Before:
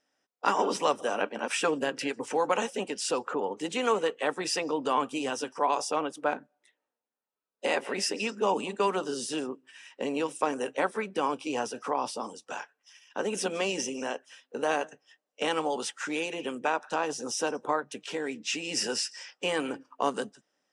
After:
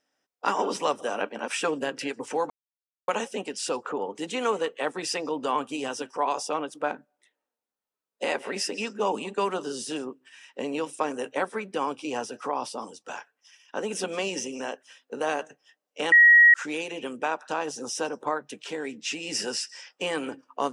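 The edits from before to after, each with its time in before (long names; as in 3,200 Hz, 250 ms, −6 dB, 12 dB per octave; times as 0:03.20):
0:02.50: splice in silence 0.58 s
0:15.54–0:15.96: beep over 1,900 Hz −11 dBFS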